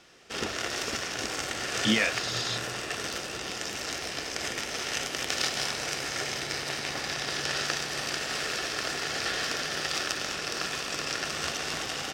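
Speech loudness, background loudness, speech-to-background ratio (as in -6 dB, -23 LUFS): -29.0 LUFS, -30.5 LUFS, 1.5 dB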